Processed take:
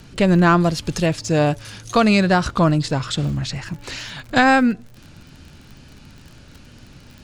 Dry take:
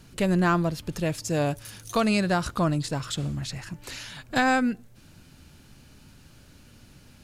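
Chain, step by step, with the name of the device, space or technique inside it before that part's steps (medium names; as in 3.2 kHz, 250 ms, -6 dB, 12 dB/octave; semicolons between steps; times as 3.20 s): 0.60–1.06 s: treble shelf 4.7 kHz +11.5 dB; lo-fi chain (low-pass 6.3 kHz 12 dB/octave; wow and flutter; crackle 44 per s -41 dBFS); trim +8 dB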